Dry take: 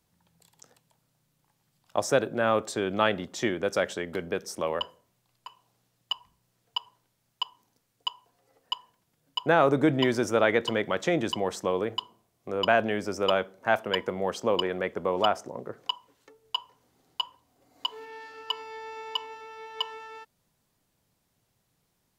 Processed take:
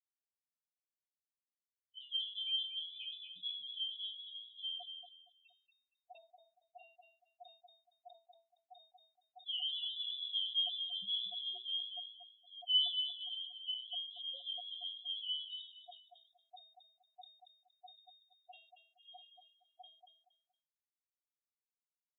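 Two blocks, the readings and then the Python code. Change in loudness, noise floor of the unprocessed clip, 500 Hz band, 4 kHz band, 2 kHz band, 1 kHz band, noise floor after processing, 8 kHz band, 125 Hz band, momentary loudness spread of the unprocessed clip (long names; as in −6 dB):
−9.0 dB, −75 dBFS, −39.5 dB, −2.5 dB, below −30 dB, −29.5 dB, below −85 dBFS, below −35 dB, below −40 dB, 13 LU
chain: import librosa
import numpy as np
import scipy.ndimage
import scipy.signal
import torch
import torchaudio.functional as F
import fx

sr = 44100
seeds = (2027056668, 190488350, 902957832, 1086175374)

p1 = fx.delta_hold(x, sr, step_db=-29.5)
p2 = scipy.signal.sosfilt(scipy.signal.butter(2, 43.0, 'highpass', fs=sr, output='sos'), p1)
p3 = fx.leveller(p2, sr, passes=1)
p4 = fx.spec_topn(p3, sr, count=2)
p5 = fx.resonator_bank(p4, sr, root=58, chord='minor', decay_s=0.3)
p6 = p5 + fx.echo_feedback(p5, sr, ms=233, feedback_pct=25, wet_db=-7.0, dry=0)
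p7 = fx.freq_invert(p6, sr, carrier_hz=3700)
p8 = fx.sustainer(p7, sr, db_per_s=95.0)
y = p8 * librosa.db_to_amplitude(3.5)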